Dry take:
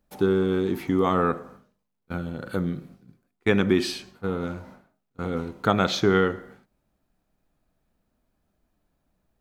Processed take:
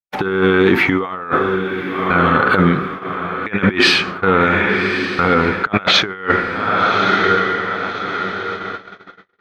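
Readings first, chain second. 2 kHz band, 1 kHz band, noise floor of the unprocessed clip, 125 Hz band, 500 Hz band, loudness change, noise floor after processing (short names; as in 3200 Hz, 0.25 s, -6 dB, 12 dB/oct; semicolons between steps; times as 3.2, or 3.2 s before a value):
+18.5 dB, +14.5 dB, -77 dBFS, +8.0 dB, +8.0 dB, +9.5 dB, -43 dBFS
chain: EQ curve 700 Hz 0 dB, 1600 Hz +7 dB, 2300 Hz +6 dB, 8700 Hz -19 dB; on a send: diffused feedback echo 1.173 s, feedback 45%, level -14 dB; on the sum: gate -43 dBFS, range -54 dB; low shelf 470 Hz -10 dB; negative-ratio compressor -31 dBFS, ratio -0.5; maximiser +19.5 dB; gain -1 dB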